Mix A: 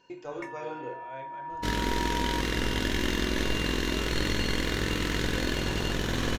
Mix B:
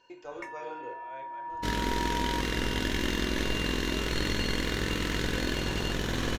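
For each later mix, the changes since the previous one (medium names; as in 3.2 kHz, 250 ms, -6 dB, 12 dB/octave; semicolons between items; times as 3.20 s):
speech: add tone controls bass -11 dB, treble 0 dB; reverb: off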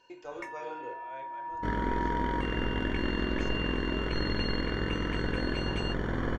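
second sound: add Savitzky-Golay filter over 41 samples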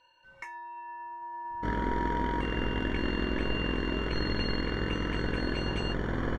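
speech: muted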